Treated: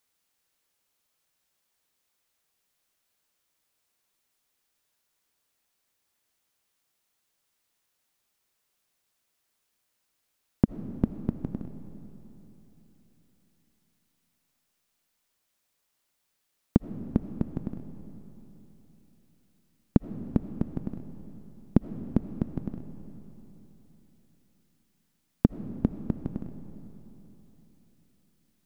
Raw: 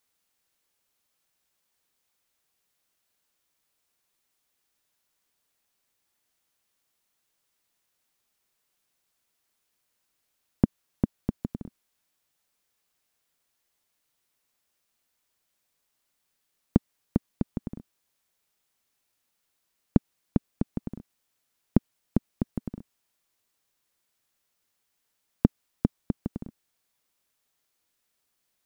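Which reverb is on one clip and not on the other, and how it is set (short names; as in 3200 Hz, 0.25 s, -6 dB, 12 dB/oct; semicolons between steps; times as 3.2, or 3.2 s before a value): digital reverb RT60 3.8 s, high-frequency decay 0.75×, pre-delay 40 ms, DRR 10 dB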